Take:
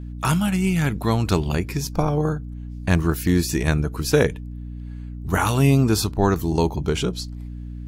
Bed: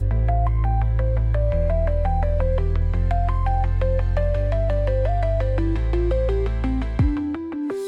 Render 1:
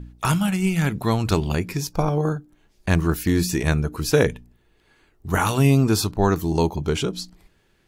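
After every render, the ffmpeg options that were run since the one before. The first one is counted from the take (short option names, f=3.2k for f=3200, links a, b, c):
-af "bandreject=f=60:t=h:w=4,bandreject=f=120:t=h:w=4,bandreject=f=180:t=h:w=4,bandreject=f=240:t=h:w=4,bandreject=f=300:t=h:w=4"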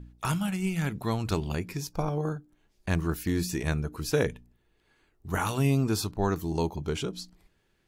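-af "volume=-8dB"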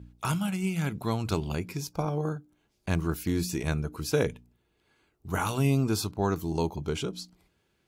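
-af "highpass=58,bandreject=f=1.8k:w=8.7"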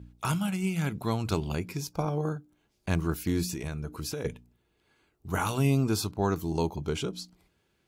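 -filter_complex "[0:a]asettb=1/sr,asplit=3[a][b][c];[a]atrim=end=3.514[d];[b]atrim=start=3.51:end=4.25,asetpts=PTS-STARTPTS,afade=t=in:d=0.004:c=qsin,afade=t=out:st=0.736:d=0.004:c=qsin,acompressor=threshold=-30dB:ratio=12:attack=3.2:release=140:knee=1:detection=peak[e];[c]atrim=start=4.246[f];[d][e]acrossfade=d=0.004:c1=hsin:c2=qsin[g];[g][f]acrossfade=d=0.004:c1=qsin:c2=hsin"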